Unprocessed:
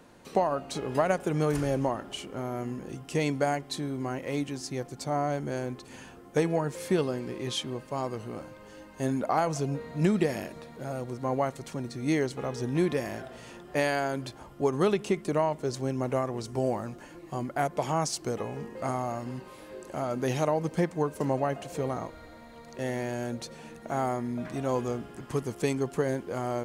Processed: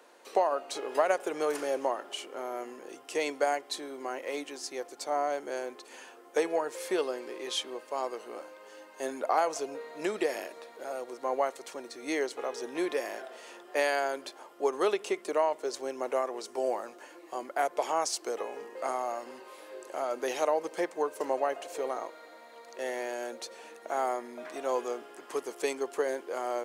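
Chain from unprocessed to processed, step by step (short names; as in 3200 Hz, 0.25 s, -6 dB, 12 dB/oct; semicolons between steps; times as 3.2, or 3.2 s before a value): HPF 380 Hz 24 dB/oct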